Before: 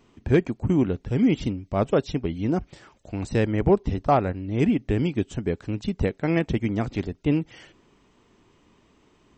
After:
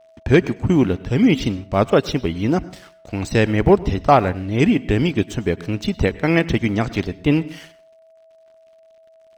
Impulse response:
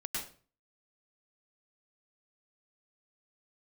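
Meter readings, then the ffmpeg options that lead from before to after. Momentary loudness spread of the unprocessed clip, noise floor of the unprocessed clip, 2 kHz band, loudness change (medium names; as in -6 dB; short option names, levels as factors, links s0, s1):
7 LU, -61 dBFS, +10.0 dB, +6.0 dB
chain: -filter_complex "[0:a]aeval=exprs='sgn(val(0))*max(abs(val(0))-0.00211,0)':c=same,tiltshelf=f=1200:g=-3.5,bandreject=f=7200:w=12,asplit=2[s0][s1];[1:a]atrim=start_sample=2205[s2];[s1][s2]afir=irnorm=-1:irlink=0,volume=0.112[s3];[s0][s3]amix=inputs=2:normalize=0,aeval=exprs='val(0)+0.00158*sin(2*PI*650*n/s)':c=same,volume=2.51"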